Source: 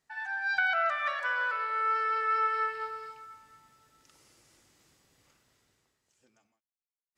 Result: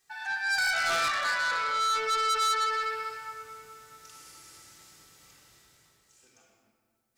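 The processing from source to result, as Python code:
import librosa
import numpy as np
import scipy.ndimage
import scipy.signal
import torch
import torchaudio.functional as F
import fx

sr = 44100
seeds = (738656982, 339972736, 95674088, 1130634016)

p1 = fx.low_shelf(x, sr, hz=400.0, db=-4.5)
p2 = p1 + fx.echo_wet_lowpass(p1, sr, ms=217, feedback_pct=75, hz=1500.0, wet_db=-20.0, dry=0)
p3 = fx.room_shoebox(p2, sr, seeds[0], volume_m3=2400.0, walls='mixed', distance_m=3.7)
p4 = 10.0 ** (-26.5 / 20.0) * np.tanh(p3 / 10.0 ** (-26.5 / 20.0))
y = fx.high_shelf(p4, sr, hz=3400.0, db=11.5)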